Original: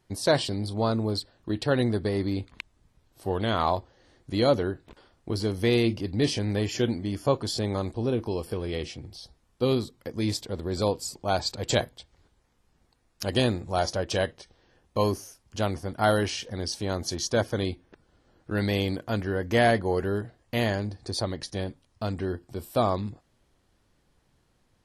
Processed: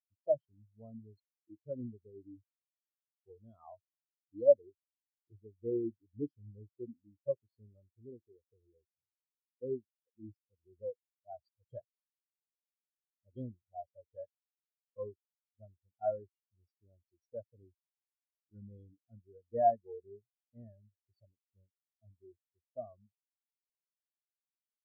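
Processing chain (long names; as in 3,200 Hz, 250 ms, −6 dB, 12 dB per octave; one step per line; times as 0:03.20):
in parallel at −11 dB: hard clipping −18 dBFS, distortion −17 dB
on the sum: every bin expanded away from the loudest bin 4 to 1
level −5.5 dB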